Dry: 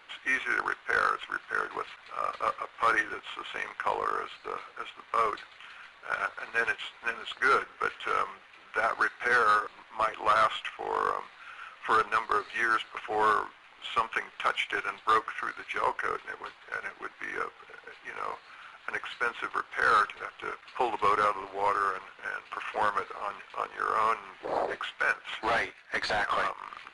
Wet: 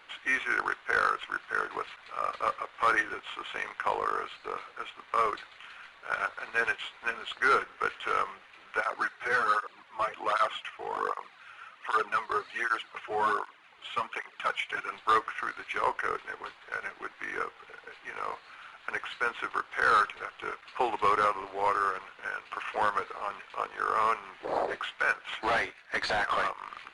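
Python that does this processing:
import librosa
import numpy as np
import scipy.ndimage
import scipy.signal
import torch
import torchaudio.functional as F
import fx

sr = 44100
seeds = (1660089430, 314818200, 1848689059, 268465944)

y = fx.flanger_cancel(x, sr, hz=1.3, depth_ms=4.3, at=(8.8, 14.91), fade=0.02)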